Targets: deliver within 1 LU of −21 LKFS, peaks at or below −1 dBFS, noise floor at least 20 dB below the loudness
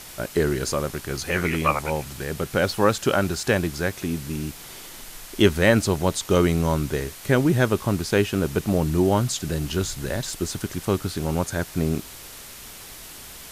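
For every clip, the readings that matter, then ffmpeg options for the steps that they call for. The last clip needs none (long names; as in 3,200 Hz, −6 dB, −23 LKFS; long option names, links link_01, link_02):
background noise floor −41 dBFS; target noise floor −44 dBFS; integrated loudness −23.5 LKFS; sample peak −3.5 dBFS; target loudness −21.0 LKFS
→ -af "afftdn=noise_reduction=6:noise_floor=-41"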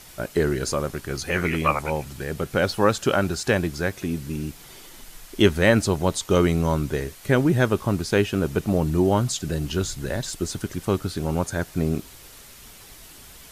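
background noise floor −46 dBFS; integrated loudness −23.5 LKFS; sample peak −4.0 dBFS; target loudness −21.0 LKFS
→ -af "volume=2.5dB"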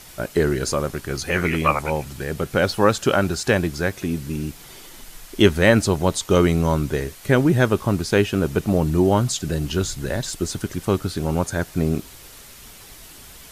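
integrated loudness −21.0 LKFS; sample peak −1.5 dBFS; background noise floor −43 dBFS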